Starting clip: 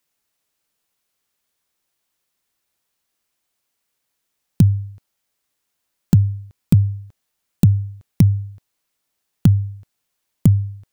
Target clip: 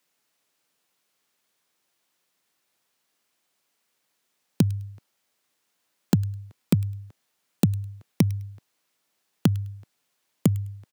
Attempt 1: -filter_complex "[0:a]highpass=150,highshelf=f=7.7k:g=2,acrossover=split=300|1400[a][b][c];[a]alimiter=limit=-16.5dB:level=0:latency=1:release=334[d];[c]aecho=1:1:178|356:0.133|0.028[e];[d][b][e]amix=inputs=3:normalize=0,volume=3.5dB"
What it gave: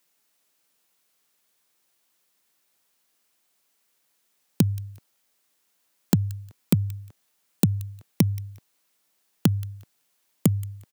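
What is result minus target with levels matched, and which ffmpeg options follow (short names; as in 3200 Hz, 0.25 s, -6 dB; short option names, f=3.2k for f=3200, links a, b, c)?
echo 74 ms late; 8000 Hz band +4.0 dB
-filter_complex "[0:a]highpass=150,highshelf=f=7.7k:g=-5.5,acrossover=split=300|1400[a][b][c];[a]alimiter=limit=-16.5dB:level=0:latency=1:release=334[d];[c]aecho=1:1:104|208:0.133|0.028[e];[d][b][e]amix=inputs=3:normalize=0,volume=3.5dB"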